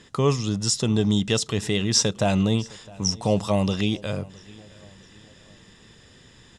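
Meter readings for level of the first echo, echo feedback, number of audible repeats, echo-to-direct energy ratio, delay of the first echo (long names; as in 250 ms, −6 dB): −23.0 dB, 46%, 2, −22.0 dB, 660 ms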